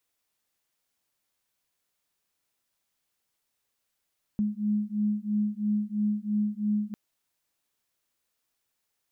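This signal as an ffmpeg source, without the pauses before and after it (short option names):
-f lavfi -i "aevalsrc='0.0398*(sin(2*PI*208*t)+sin(2*PI*211*t))':d=2.55:s=44100"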